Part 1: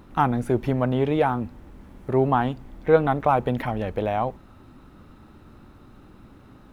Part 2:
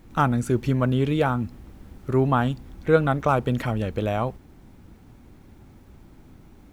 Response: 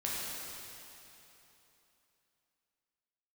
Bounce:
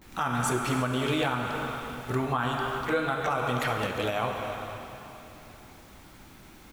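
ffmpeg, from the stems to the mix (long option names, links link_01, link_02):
-filter_complex "[0:a]volume=-11dB,asplit=2[link_01][link_02];[1:a]tiltshelf=frequency=680:gain=-8.5,adelay=16,volume=0dB,asplit=2[link_03][link_04];[link_04]volume=-9dB[link_05];[link_02]apad=whole_len=297473[link_06];[link_03][link_06]sidechaincompress=threshold=-35dB:ratio=8:attack=22:release=478[link_07];[2:a]atrim=start_sample=2205[link_08];[link_05][link_08]afir=irnorm=-1:irlink=0[link_09];[link_01][link_07][link_09]amix=inputs=3:normalize=0,alimiter=limit=-17dB:level=0:latency=1:release=229"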